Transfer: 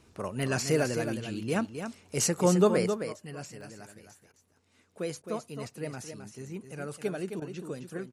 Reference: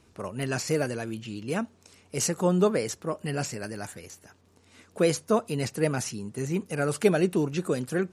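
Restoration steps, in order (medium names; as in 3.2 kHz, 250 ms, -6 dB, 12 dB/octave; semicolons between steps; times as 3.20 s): interpolate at 3.61 s, 1.1 ms; interpolate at 4.32/5.22/7.40 s, 16 ms; inverse comb 264 ms -8 dB; trim 0 dB, from 2.86 s +11.5 dB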